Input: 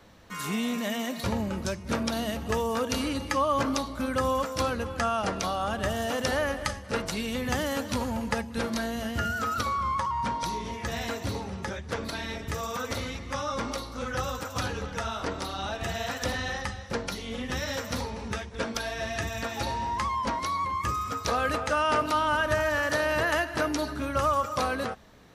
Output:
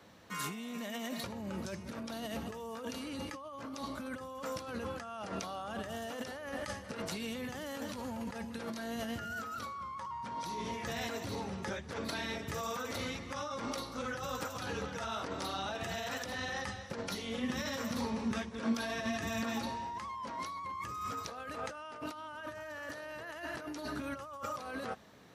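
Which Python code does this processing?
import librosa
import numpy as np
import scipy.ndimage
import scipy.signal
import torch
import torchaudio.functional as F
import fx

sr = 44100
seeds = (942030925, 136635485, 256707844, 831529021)

y = scipy.signal.sosfilt(scipy.signal.butter(2, 110.0, 'highpass', fs=sr, output='sos'), x)
y = fx.over_compress(y, sr, threshold_db=-34.0, ratio=-1.0)
y = fx.small_body(y, sr, hz=(230.0, 1100.0), ring_ms=90, db=11, at=(17.42, 19.76))
y = y * librosa.db_to_amplitude(-6.5)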